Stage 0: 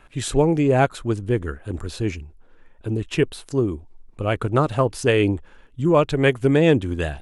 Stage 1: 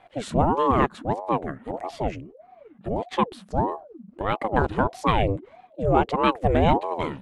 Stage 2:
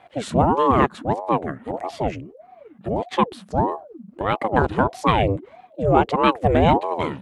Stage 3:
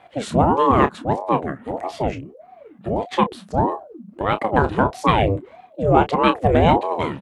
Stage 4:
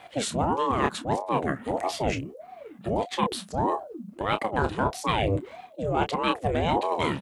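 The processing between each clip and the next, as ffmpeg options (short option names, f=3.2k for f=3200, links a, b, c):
-af "lowpass=f=2.5k:p=1,aeval=exprs='val(0)*sin(2*PI*470*n/s+470*0.6/1.6*sin(2*PI*1.6*n/s))':c=same"
-af "highpass=58,volume=3.5dB"
-filter_complex "[0:a]asplit=2[a][b];[b]adelay=29,volume=-10.5dB[c];[a][c]amix=inputs=2:normalize=0,volume=1dB"
-af "highshelf=f=3k:g=12,areverse,acompressor=threshold=-22dB:ratio=6,areverse"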